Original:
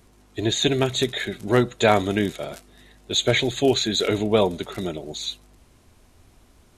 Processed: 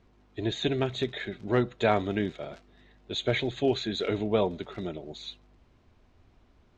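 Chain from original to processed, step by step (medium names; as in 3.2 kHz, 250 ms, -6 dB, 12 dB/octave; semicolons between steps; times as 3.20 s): distance through air 180 m; trim -6 dB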